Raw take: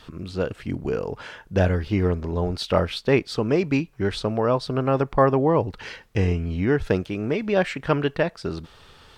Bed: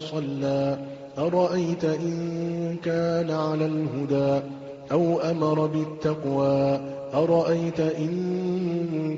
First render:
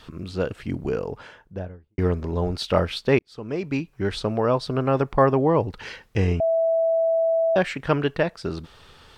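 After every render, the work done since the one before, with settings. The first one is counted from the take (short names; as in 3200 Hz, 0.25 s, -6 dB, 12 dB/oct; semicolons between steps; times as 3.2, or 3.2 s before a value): 0.84–1.98 studio fade out; 3.19–4.46 fade in equal-power; 6.4–7.56 bleep 657 Hz -17.5 dBFS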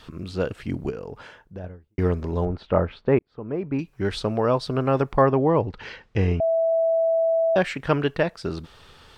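0.9–1.64 compressor 3:1, threshold -32 dBFS; 2.45–3.79 LPF 1400 Hz; 5.21–6.72 air absorption 110 m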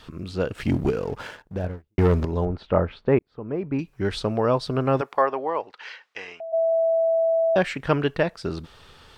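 0.55–2.25 sample leveller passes 2; 5–6.52 HPF 480 Hz -> 1400 Hz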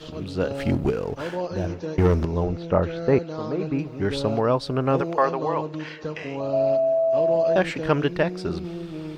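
add bed -7 dB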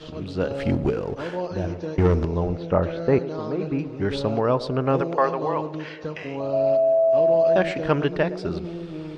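air absorption 54 m; narrowing echo 0.114 s, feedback 67%, band-pass 440 Hz, level -13.5 dB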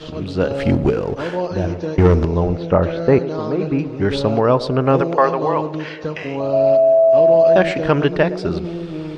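gain +6.5 dB; limiter -3 dBFS, peak gain reduction 2 dB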